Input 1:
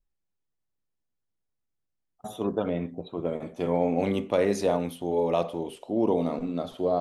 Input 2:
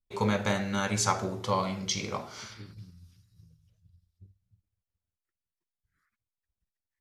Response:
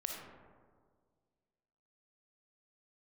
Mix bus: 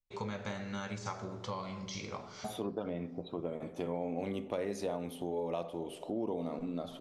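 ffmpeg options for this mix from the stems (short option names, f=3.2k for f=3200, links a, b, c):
-filter_complex "[0:a]adelay=200,volume=0dB,asplit=2[a][b];[b]volume=-17.5dB[c];[1:a]deesser=0.75,lowpass=f=7.3k:w=0.5412,lowpass=f=7.3k:w=1.3066,volume=-7.5dB,asplit=2[d][e];[e]volume=-12dB[f];[2:a]atrim=start_sample=2205[g];[c][f]amix=inputs=2:normalize=0[h];[h][g]afir=irnorm=-1:irlink=0[i];[a][d][i]amix=inputs=3:normalize=0,acompressor=threshold=-37dB:ratio=3"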